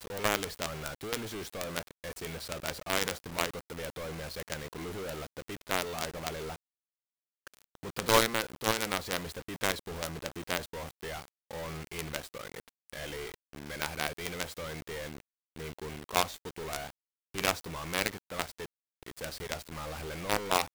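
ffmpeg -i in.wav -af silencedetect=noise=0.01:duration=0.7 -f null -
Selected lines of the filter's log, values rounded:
silence_start: 6.56
silence_end: 7.47 | silence_duration: 0.91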